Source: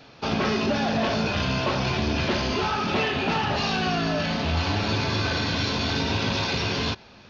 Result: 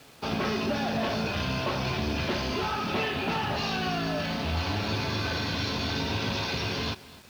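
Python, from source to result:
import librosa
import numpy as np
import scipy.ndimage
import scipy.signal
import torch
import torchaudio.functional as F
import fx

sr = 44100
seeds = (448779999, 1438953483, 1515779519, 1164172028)

y = fx.quant_dither(x, sr, seeds[0], bits=8, dither='none')
y = y + 10.0 ** (-19.5 / 20.0) * np.pad(y, (int(252 * sr / 1000.0), 0))[:len(y)]
y = y * librosa.db_to_amplitude(-4.5)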